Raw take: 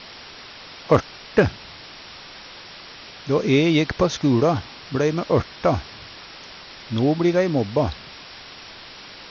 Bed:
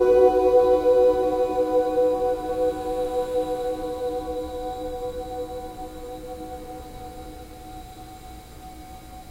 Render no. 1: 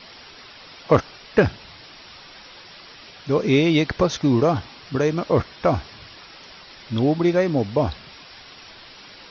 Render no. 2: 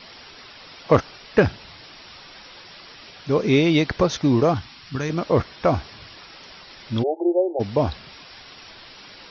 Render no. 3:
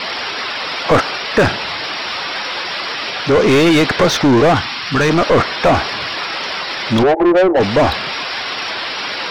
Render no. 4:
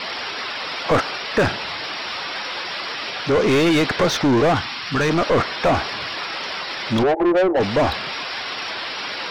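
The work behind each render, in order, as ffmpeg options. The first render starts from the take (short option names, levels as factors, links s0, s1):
-af "afftdn=nr=6:nf=-41"
-filter_complex "[0:a]asettb=1/sr,asplit=3[s0][s1][s2];[s0]atrim=end=4.544[s3];[s1]atrim=start=4.54:end=5.1,asetpts=PTS-STARTPTS,afade=t=in:d=0.004:c=qsin,afade=t=out:st=0.556:d=0.004:c=qsin,equalizer=f=510:w=0.91:g=-11.5[s4];[s2]atrim=start=5.096[s5];[s3][s4]acrossfade=d=0.004:c1=hsin:c2=qsin[s6];[s6][s5]acrossfade=d=0.004:c1=qsin:c2=hsin,asplit=3[s7][s8][s9];[s7]afade=t=out:st=7.02:d=0.02[s10];[s8]asuperpass=centerf=540:order=20:qfactor=1,afade=t=in:st=7.02:d=0.02,afade=t=out:st=7.59:d=0.02[s11];[s9]afade=t=in:st=7.59:d=0.02[s12];[s10][s11][s12]amix=inputs=3:normalize=0"
-filter_complex "[0:a]asplit=2[s0][s1];[s1]highpass=f=720:p=1,volume=31.6,asoftclip=type=tanh:threshold=0.562[s2];[s0][s2]amix=inputs=2:normalize=0,lowpass=f=2300:p=1,volume=0.501,asplit=2[s3][s4];[s4]asoftclip=type=tanh:threshold=0.188,volume=0.316[s5];[s3][s5]amix=inputs=2:normalize=0"
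-af "volume=0.531"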